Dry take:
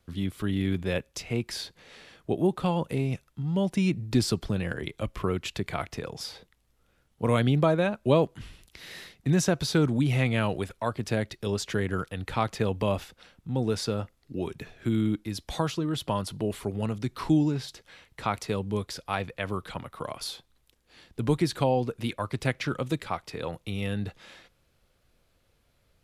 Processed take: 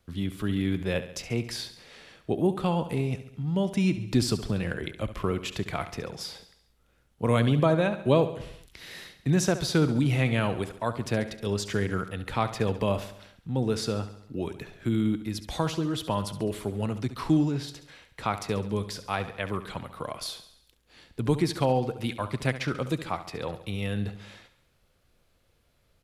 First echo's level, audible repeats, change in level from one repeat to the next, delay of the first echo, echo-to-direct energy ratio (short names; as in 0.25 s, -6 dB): -13.0 dB, 5, -5.0 dB, 69 ms, -11.5 dB